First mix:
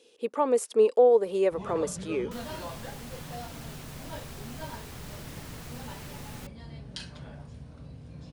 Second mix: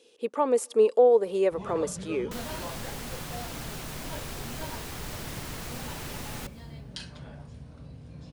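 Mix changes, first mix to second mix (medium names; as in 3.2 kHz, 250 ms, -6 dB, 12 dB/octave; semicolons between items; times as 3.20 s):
second sound +4.5 dB; reverb: on, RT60 1.2 s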